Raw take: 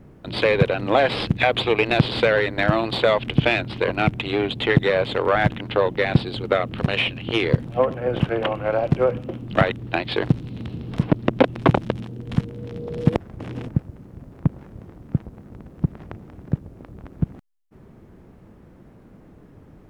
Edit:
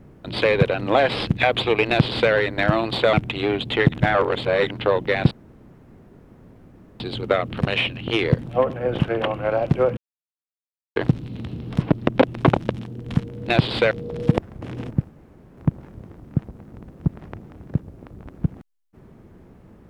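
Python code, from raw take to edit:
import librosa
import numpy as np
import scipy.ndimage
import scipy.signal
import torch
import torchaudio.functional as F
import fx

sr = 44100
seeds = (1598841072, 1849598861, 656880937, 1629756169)

y = fx.edit(x, sr, fx.duplicate(start_s=1.89, length_s=0.43, to_s=12.69),
    fx.cut(start_s=3.13, length_s=0.9),
    fx.reverse_span(start_s=4.82, length_s=0.76),
    fx.insert_room_tone(at_s=6.21, length_s=1.69),
    fx.silence(start_s=9.18, length_s=0.99),
    fx.room_tone_fill(start_s=13.87, length_s=0.48), tone=tone)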